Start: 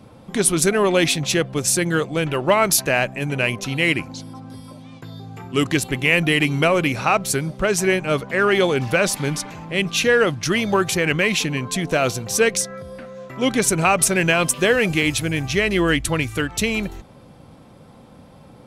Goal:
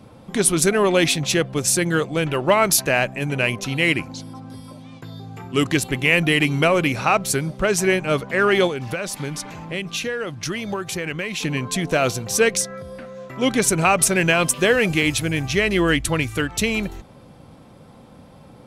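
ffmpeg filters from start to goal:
-filter_complex "[0:a]asettb=1/sr,asplit=3[a][b][c];[a]atrim=end=8.674[d];[b]atrim=start=8.67:end=11.43,asetpts=PTS-STARTPTS,afade=t=in:d=0.004:c=qsin,afade=t=out:st=2.756:d=0.004:c=qsin,acompressor=threshold=-24dB:ratio=6[e];[c]atrim=start=11.426[f];[d][e]acrossfade=d=0.004:c1=hsin:c2=qsin[g];[g][f]acrossfade=d=0.004:c1=qsin:c2=hsin"

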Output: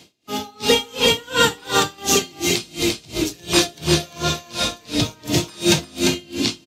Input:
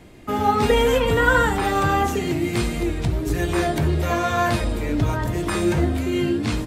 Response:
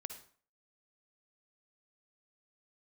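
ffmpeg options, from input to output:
-filter_complex "[0:a]highpass=130,highshelf=f=7.1k:t=q:w=1.5:g=-8,asettb=1/sr,asplit=3[a][b][c];[a]atrim=end=1.984[d];[b]atrim=start=1.98:end=4.18,asetpts=PTS-STARTPTS,afade=t=in:d=0.004:c=qsin,afade=t=out:st=2.196:d=0.004:c=qsin,acontrast=74[e];[c]atrim=start=4.176[f];[d][e]acrossfade=d=0.004:c1=hsin:c2=qsin[g];[g][f]acrossfade=d=0.004:c1=qsin:c2=hsin,aecho=1:1:347:0.596[h];[1:a]atrim=start_sample=2205,atrim=end_sample=3087[i];[h][i]afir=irnorm=-1:irlink=0,aexciter=amount=6.9:drive=2.3:freq=2.7k,dynaudnorm=f=150:g=9:m=8.5dB,aeval=exprs='val(0)*pow(10,-30*(0.5-0.5*cos(2*PI*2.8*n/s))/20)':c=same,volume=2.5dB"

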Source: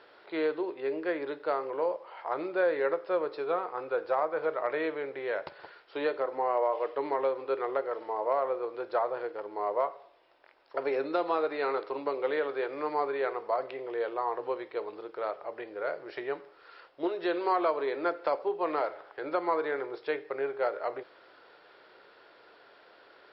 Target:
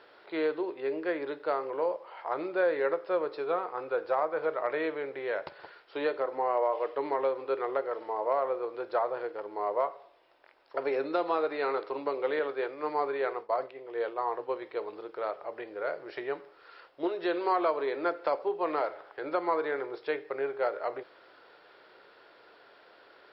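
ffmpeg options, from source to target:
-filter_complex "[0:a]asettb=1/sr,asplit=3[a][b][c];[a]atrim=end=12.394[d];[b]atrim=start=12.39:end=14.62,asetpts=PTS-STARTPTS,afade=t=in:d=0.004:c=qsin,afade=t=out:st=2.226:d=0.004:c=qsin,agate=range=-33dB:threshold=-32dB:ratio=3:detection=peak[e];[c]atrim=start=14.616[f];[d][e]acrossfade=d=0.004:c1=hsin:c2=qsin[g];[g][f]acrossfade=d=0.004:c1=qsin:c2=hsin"

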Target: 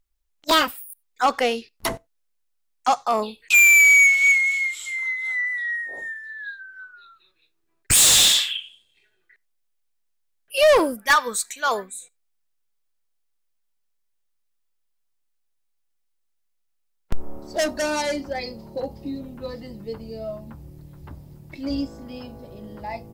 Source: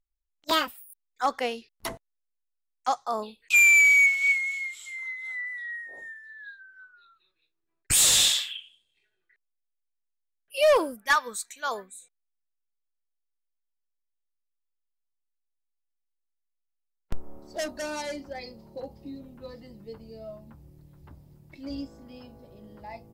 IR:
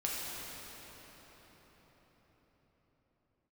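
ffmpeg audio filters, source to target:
-filter_complex "[0:a]asoftclip=type=tanh:threshold=-20.5dB,asplit=2[a][b];[1:a]atrim=start_sample=2205,atrim=end_sample=4410[c];[b][c]afir=irnorm=-1:irlink=0,volume=-25.5dB[d];[a][d]amix=inputs=2:normalize=0,volume=9dB"

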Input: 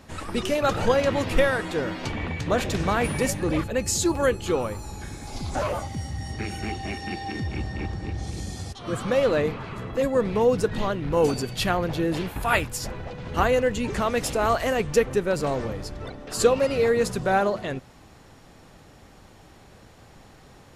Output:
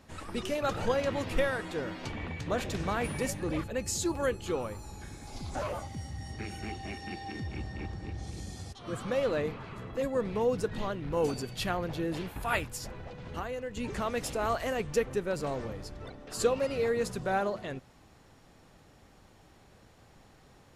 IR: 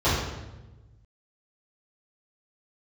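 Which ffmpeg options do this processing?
-filter_complex "[0:a]asettb=1/sr,asplit=3[a][b][c];[a]atrim=end=12.774[d];[b]atrim=start=12.77:end=13.77,asetpts=PTS-STARTPTS,afade=t=in:d=0.004:c=qsin,afade=t=out:st=0.996:d=0.004:c=qsin,acompressor=threshold=-28dB:ratio=3[e];[c]atrim=start=13.766[f];[d][e]acrossfade=d=0.004:c1=hsin:c2=qsin[g];[g][f]acrossfade=d=0.004:c1=qsin:c2=hsin,volume=-8dB"

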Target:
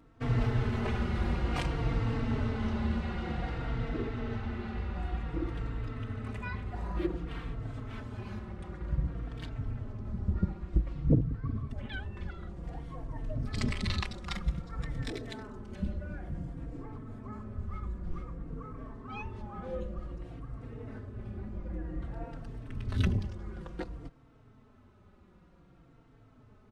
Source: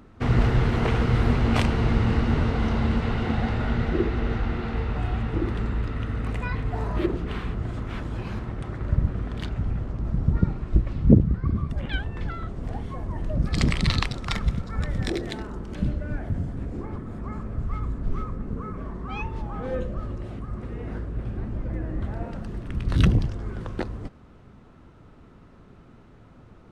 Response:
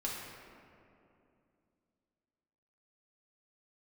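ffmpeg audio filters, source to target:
-filter_complex "[0:a]asplit=2[a][b];[b]adelay=3.9,afreqshift=-0.54[c];[a][c]amix=inputs=2:normalize=1,volume=-6dB"

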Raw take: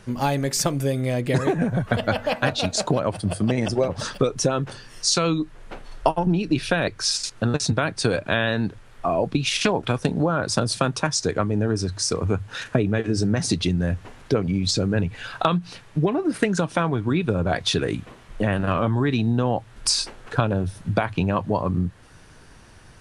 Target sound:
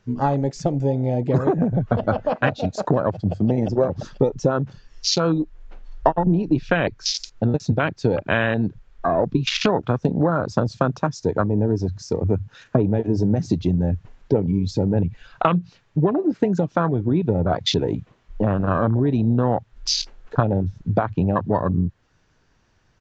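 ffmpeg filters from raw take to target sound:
-af "afwtdn=0.0631,aresample=16000,aresample=44100,volume=2.5dB"

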